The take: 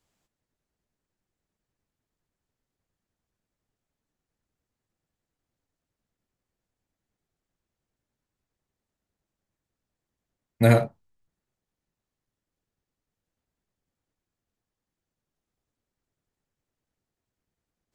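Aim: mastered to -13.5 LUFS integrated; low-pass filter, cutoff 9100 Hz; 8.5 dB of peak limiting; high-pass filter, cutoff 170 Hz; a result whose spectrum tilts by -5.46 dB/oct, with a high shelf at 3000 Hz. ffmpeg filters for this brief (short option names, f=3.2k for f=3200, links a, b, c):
-af "highpass=170,lowpass=9.1k,highshelf=f=3k:g=6,volume=15dB,alimiter=limit=0dB:level=0:latency=1"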